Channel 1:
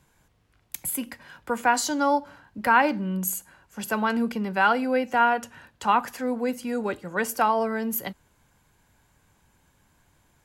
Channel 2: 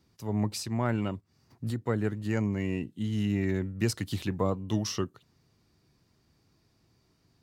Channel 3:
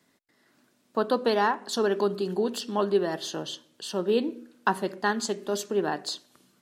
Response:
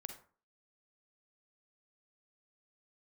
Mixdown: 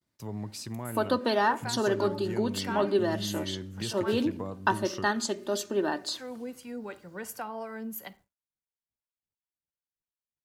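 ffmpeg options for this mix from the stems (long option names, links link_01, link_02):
-filter_complex "[0:a]acrossover=split=490[link_01][link_02];[link_01]aeval=exprs='val(0)*(1-0.7/2+0.7/2*cos(2*PI*2.8*n/s))':channel_layout=same[link_03];[link_02]aeval=exprs='val(0)*(1-0.7/2-0.7/2*cos(2*PI*2.8*n/s))':channel_layout=same[link_04];[link_03][link_04]amix=inputs=2:normalize=0,volume=-9.5dB,asplit=3[link_05][link_06][link_07];[link_05]atrim=end=4.37,asetpts=PTS-STARTPTS,afade=type=out:start_time=4.366:duration=0.004:curve=hsin[link_08];[link_06]atrim=start=4.37:end=6.11,asetpts=PTS-STARTPTS,volume=0[link_09];[link_07]atrim=start=6.11,asetpts=PTS-STARTPTS,afade=type=in:duration=0.004:curve=hsin[link_10];[link_08][link_09][link_10]concat=n=3:v=0:a=1,asplit=2[link_11][link_12];[link_12]volume=-7dB[link_13];[1:a]highpass=53,volume=-0.5dB,asplit=2[link_14][link_15];[link_15]volume=-15.5dB[link_16];[2:a]aecho=1:1:3.3:0.51,volume=-1.5dB[link_17];[link_11][link_14]amix=inputs=2:normalize=0,acrusher=bits=11:mix=0:aa=0.000001,acompressor=threshold=-36dB:ratio=6,volume=0dB[link_18];[3:a]atrim=start_sample=2205[link_19];[link_13][link_16]amix=inputs=2:normalize=0[link_20];[link_20][link_19]afir=irnorm=-1:irlink=0[link_21];[link_17][link_18][link_21]amix=inputs=3:normalize=0,agate=range=-33dB:threshold=-52dB:ratio=3:detection=peak"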